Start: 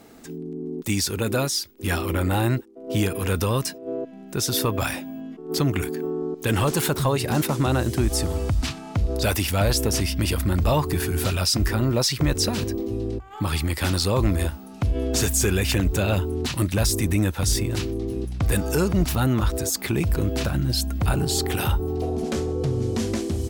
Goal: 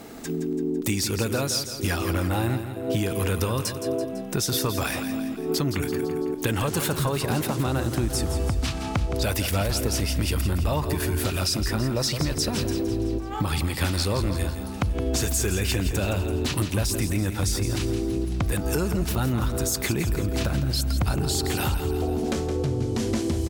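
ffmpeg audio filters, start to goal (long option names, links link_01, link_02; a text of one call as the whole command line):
ffmpeg -i in.wav -filter_complex "[0:a]acompressor=threshold=-30dB:ratio=6,asplit=2[link_01][link_02];[link_02]aecho=0:1:167|334|501|668|835|1002:0.335|0.181|0.0977|0.0527|0.0285|0.0154[link_03];[link_01][link_03]amix=inputs=2:normalize=0,volume=7dB" out.wav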